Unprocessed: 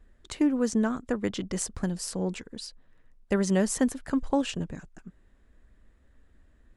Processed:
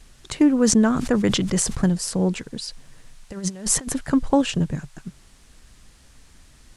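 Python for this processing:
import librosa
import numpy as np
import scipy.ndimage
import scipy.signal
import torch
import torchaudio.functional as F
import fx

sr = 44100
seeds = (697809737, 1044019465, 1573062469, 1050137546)

y = fx.peak_eq(x, sr, hz=140.0, db=11.0, octaves=0.44)
y = fx.over_compress(y, sr, threshold_db=-30.0, ratio=-0.5, at=(2.67, 4.0), fade=0.02)
y = fx.dmg_noise_band(y, sr, seeds[0], low_hz=620.0, high_hz=9900.0, level_db=-65.0)
y = fx.sustainer(y, sr, db_per_s=50.0, at=(0.61, 1.93))
y = y * 10.0 ** (7.0 / 20.0)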